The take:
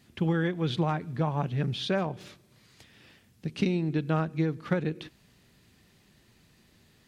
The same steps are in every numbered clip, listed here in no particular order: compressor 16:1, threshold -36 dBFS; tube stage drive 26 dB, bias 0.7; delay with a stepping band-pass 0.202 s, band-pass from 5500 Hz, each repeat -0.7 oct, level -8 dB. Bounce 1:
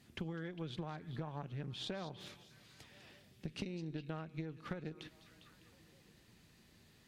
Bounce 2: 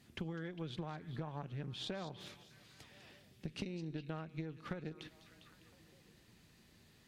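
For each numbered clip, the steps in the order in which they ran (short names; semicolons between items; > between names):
compressor > delay with a stepping band-pass > tube stage; compressor > tube stage > delay with a stepping band-pass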